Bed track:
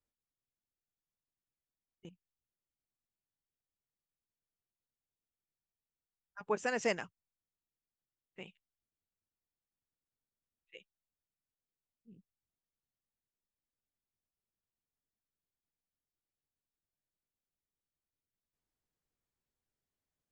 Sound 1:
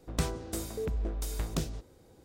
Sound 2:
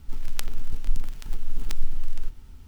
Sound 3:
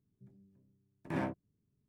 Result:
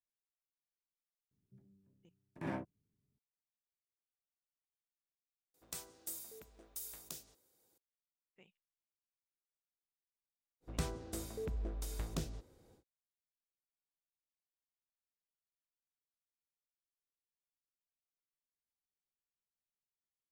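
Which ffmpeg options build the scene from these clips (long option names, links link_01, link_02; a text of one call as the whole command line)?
ffmpeg -i bed.wav -i cue0.wav -i cue1.wav -i cue2.wav -filter_complex "[1:a]asplit=2[link_01][link_02];[0:a]volume=-16dB[link_03];[link_01]aemphasis=mode=production:type=riaa[link_04];[link_02]acontrast=78[link_05];[link_03]asplit=2[link_06][link_07];[link_06]atrim=end=5.544[link_08];[link_04]atrim=end=2.24,asetpts=PTS-STARTPTS,volume=-18dB[link_09];[link_07]atrim=start=7.776[link_10];[3:a]atrim=end=1.88,asetpts=PTS-STARTPTS,volume=-5dB,afade=type=in:duration=0.004:curve=hsin,afade=type=out:start_time=1.876:duration=0.004:curve=hsin,adelay=1310[link_11];[link_05]atrim=end=2.24,asetpts=PTS-STARTPTS,volume=-14dB,afade=type=in:duration=0.1,afade=type=out:start_time=2.14:duration=0.1,adelay=10600[link_12];[link_08][link_09]acrossfade=duration=0.004:curve1=hsin:curve2=hsin[link_13];[link_13][link_10]acrossfade=duration=0.004:curve1=hsin:curve2=hsin[link_14];[link_14][link_11][link_12]amix=inputs=3:normalize=0" out.wav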